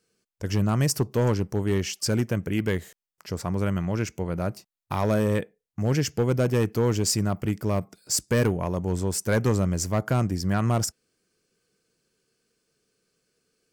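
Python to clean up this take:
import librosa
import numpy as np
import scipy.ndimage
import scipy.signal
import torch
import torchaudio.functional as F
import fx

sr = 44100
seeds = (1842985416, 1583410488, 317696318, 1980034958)

y = fx.fix_declip(x, sr, threshold_db=-15.5)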